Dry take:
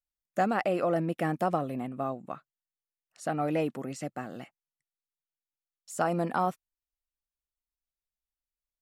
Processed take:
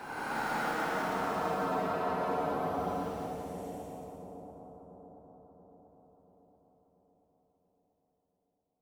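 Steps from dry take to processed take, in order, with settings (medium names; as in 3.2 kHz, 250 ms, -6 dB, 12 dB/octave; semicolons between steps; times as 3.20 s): cycle switcher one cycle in 2, muted; Paulstretch 18×, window 0.05 s, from 6.33 s; two-band feedback delay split 770 Hz, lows 684 ms, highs 181 ms, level -5 dB; trim -4.5 dB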